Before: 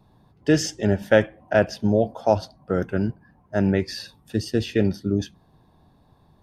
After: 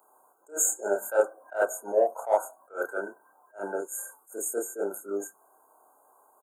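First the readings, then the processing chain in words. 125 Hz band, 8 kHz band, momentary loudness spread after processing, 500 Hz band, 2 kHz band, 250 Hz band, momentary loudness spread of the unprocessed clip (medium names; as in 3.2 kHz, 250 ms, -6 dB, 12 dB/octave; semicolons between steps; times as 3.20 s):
under -35 dB, +7.0 dB, 12 LU, -5.0 dB, -7.0 dB, -19.0 dB, 9 LU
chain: FFT band-reject 1.6–6.5 kHz; high-pass 420 Hz 24 dB/octave; tilt EQ +3.5 dB/octave; in parallel at -10.5 dB: saturation -19 dBFS, distortion -10 dB; on the sum: doubling 30 ms -3 dB; attacks held to a fixed rise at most 240 dB/s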